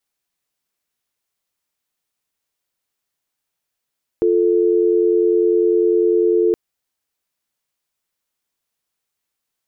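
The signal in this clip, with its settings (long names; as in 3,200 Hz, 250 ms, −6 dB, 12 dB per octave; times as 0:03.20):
call progress tone dial tone, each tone −15 dBFS 2.32 s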